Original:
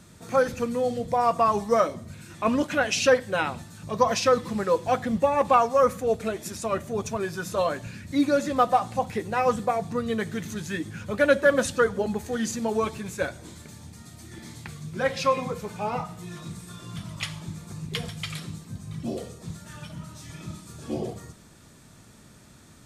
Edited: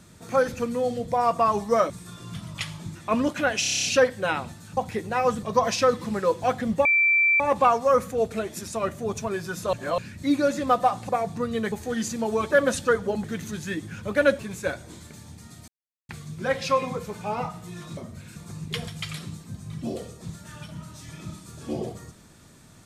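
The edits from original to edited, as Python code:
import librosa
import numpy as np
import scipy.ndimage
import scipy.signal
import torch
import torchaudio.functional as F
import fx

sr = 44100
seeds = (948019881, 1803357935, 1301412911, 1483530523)

y = fx.edit(x, sr, fx.swap(start_s=1.9, length_s=0.39, other_s=16.52, other_length_s=1.05),
    fx.stutter(start_s=2.94, slice_s=0.03, count=9),
    fx.insert_tone(at_s=5.29, length_s=0.55, hz=2340.0, db=-16.5),
    fx.reverse_span(start_s=7.62, length_s=0.25),
    fx.move(start_s=8.98, length_s=0.66, to_s=3.87),
    fx.swap(start_s=10.27, length_s=1.15, other_s=12.15, other_length_s=0.79),
    fx.silence(start_s=14.23, length_s=0.41), tone=tone)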